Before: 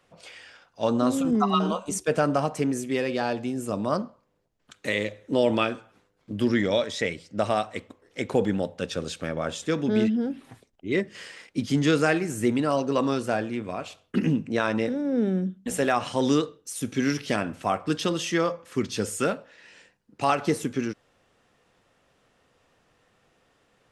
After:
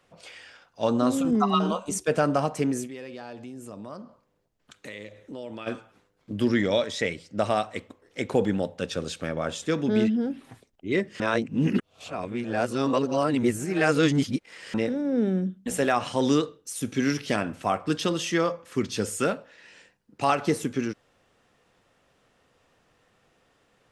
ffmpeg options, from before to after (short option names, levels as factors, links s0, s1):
-filter_complex "[0:a]asplit=3[s0][s1][s2];[s0]afade=t=out:st=2.86:d=0.02[s3];[s1]acompressor=threshold=0.00794:ratio=2.5:attack=3.2:release=140:knee=1:detection=peak,afade=t=in:st=2.86:d=0.02,afade=t=out:st=5.66:d=0.02[s4];[s2]afade=t=in:st=5.66:d=0.02[s5];[s3][s4][s5]amix=inputs=3:normalize=0,asplit=3[s6][s7][s8];[s6]atrim=end=11.202[s9];[s7]atrim=start=11.198:end=14.742,asetpts=PTS-STARTPTS,areverse[s10];[s8]atrim=start=14.738[s11];[s9][s10]acrossfade=d=0.004:c1=hsin:c2=hsin[s12];[s12][s11]acrossfade=d=0.004:c1=hsin:c2=hsin"